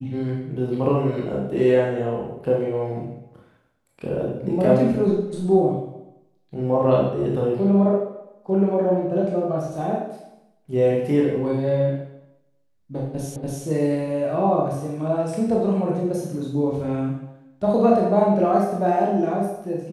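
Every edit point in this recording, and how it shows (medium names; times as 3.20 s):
13.36 s: repeat of the last 0.29 s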